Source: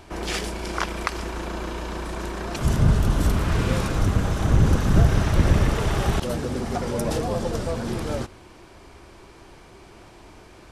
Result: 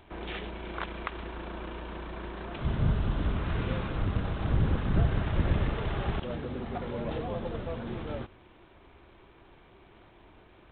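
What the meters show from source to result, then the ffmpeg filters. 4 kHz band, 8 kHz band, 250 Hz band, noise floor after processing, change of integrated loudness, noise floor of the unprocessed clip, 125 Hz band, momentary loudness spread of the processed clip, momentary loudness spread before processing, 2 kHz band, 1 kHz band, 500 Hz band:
−10.5 dB, below −40 dB, −8.5 dB, −57 dBFS, −8.5 dB, −48 dBFS, −8.5 dB, 12 LU, 12 LU, −8.5 dB, −8.5 dB, −8.5 dB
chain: -af "volume=-8.5dB" -ar 8000 -c:a adpcm_g726 -b:a 24k

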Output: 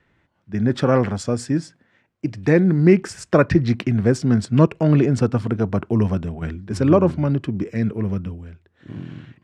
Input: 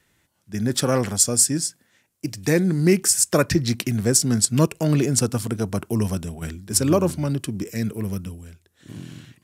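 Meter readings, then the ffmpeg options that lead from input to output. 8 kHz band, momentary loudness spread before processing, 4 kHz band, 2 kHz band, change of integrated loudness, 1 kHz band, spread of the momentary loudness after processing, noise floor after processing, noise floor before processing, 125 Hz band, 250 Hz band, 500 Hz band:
−19.5 dB, 15 LU, −10.0 dB, +2.0 dB, +1.5 dB, +3.5 dB, 14 LU, −65 dBFS, −66 dBFS, +4.0 dB, +4.0 dB, +4.0 dB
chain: -af "lowpass=2100,volume=4dB"

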